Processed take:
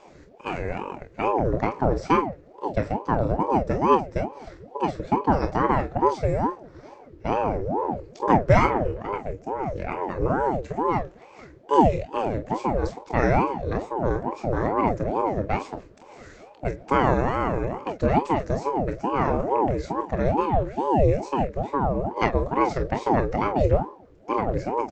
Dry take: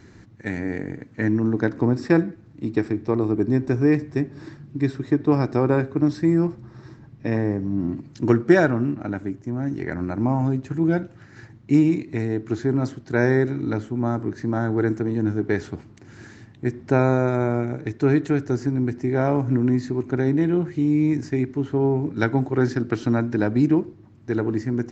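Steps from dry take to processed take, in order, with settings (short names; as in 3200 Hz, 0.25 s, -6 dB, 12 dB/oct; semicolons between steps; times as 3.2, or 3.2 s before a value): early reflections 26 ms -7 dB, 46 ms -10.5 dB; ring modulator with a swept carrier 450 Hz, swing 60%, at 2.3 Hz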